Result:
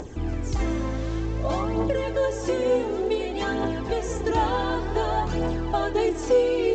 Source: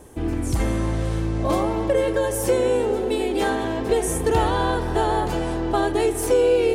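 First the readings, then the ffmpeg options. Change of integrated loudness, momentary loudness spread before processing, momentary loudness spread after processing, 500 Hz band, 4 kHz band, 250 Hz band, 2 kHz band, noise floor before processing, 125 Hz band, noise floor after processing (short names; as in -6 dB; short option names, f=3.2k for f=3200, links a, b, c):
-3.5 dB, 5 LU, 6 LU, -3.5 dB, -3.5 dB, -3.5 dB, -3.0 dB, -26 dBFS, -3.5 dB, -31 dBFS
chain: -af "acompressor=mode=upward:threshold=-28dB:ratio=2.5,aphaser=in_gain=1:out_gain=1:delay=4:decay=0.48:speed=0.55:type=triangular,volume=-4.5dB" -ar 16000 -c:a pcm_mulaw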